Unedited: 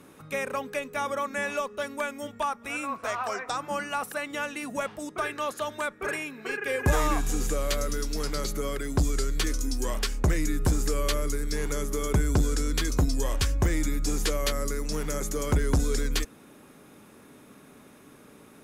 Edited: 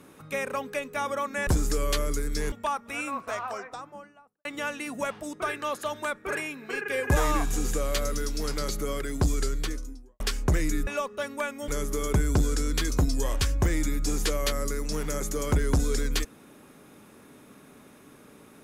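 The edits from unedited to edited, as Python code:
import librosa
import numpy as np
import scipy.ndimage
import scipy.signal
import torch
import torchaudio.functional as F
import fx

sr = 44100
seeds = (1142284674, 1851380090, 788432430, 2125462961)

y = fx.studio_fade_out(x, sr, start_s=2.8, length_s=1.41)
y = fx.studio_fade_out(y, sr, start_s=9.14, length_s=0.82)
y = fx.edit(y, sr, fx.swap(start_s=1.47, length_s=0.81, other_s=10.63, other_length_s=1.05), tone=tone)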